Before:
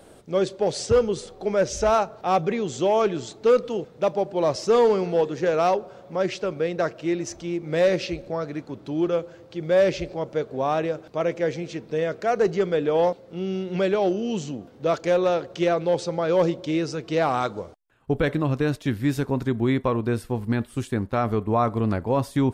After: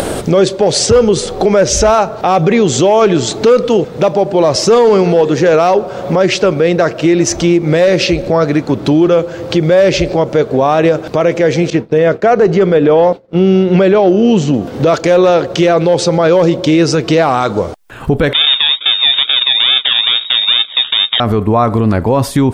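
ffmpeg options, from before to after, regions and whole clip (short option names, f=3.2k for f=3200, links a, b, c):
-filter_complex "[0:a]asettb=1/sr,asplit=3[a][b][c];[a]atrim=end=11.704[d];[b]atrim=start=11.7:end=14.54,asetpts=PTS-STARTPTS,afade=t=in:d=0.004:c=qsin,afade=t=out:st=2.836:d=0.004:c=qsin,agate=range=-33dB:threshold=-35dB:ratio=3:release=100:detection=peak,highshelf=f=3.8k:g=-10.5[e];[c]atrim=start=14.536[f];[d][e]acrossfade=d=0.004:c1=hsin:c2=qsin[g];[g][f]acrossfade=d=0.004:c1=qsin:c2=hsin,asettb=1/sr,asplit=3[h][i][j];[h]atrim=end=18.334[k];[i]atrim=start=18.33:end=21.2,asetpts=PTS-STARTPTS,afade=t=in:d=0.004:c=qsin,afade=t=out:st=2.866:d=0.004:c=qsin,acrusher=samples=37:mix=1:aa=0.000001:lfo=1:lforange=22.2:lforate=2.3,lowpass=f=3.2k:t=q:w=0.5098,lowpass=f=3.2k:t=q:w=0.6013,lowpass=f=3.2k:t=q:w=0.9,lowpass=f=3.2k:t=q:w=2.563,afreqshift=-3800[l];[j]atrim=start=21.196[m];[k][l]acrossfade=d=0.004:c1=hsin:c2=qsin[n];[n][m]acrossfade=d=0.004:c1=qsin:c2=hsin,acompressor=mode=upward:threshold=-24dB:ratio=2.5,alimiter=level_in=19.5dB:limit=-1dB:release=50:level=0:latency=1,volume=-1dB"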